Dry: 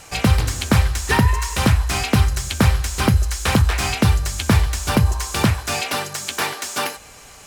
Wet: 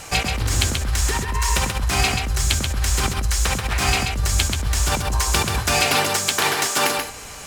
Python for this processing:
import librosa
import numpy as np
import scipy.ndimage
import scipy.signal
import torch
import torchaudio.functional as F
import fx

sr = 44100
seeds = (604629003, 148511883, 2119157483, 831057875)

y = fx.over_compress(x, sr, threshold_db=-23.0, ratio=-1.0)
y = y + 10.0 ** (-5.0 / 20.0) * np.pad(y, (int(133 * sr / 1000.0), 0))[:len(y)]
y = F.gain(torch.from_numpy(y), 1.0).numpy()